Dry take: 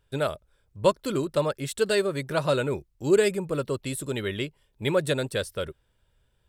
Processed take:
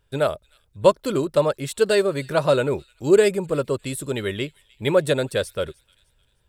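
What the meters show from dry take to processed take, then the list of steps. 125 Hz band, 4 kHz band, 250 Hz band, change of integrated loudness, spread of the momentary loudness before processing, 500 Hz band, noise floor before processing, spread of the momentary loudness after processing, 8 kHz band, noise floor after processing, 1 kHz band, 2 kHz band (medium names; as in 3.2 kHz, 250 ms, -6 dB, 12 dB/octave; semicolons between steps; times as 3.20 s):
+2.5 dB, +2.5 dB, +4.0 dB, +5.0 dB, 10 LU, +5.5 dB, -70 dBFS, 10 LU, +2.5 dB, -65 dBFS, +4.5 dB, +3.0 dB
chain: feedback echo behind a high-pass 305 ms, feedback 37%, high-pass 2.8 kHz, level -21 dB; dynamic bell 600 Hz, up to +4 dB, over -32 dBFS, Q 0.86; trim +2.5 dB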